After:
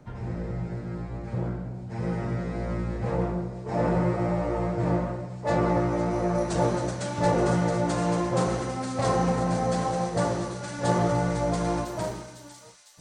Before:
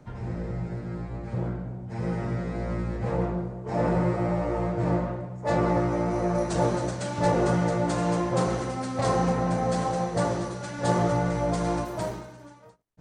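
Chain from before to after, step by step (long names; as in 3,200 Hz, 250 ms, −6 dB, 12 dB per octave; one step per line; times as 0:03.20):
delay with a high-pass on its return 503 ms, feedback 70%, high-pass 3,900 Hz, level −7 dB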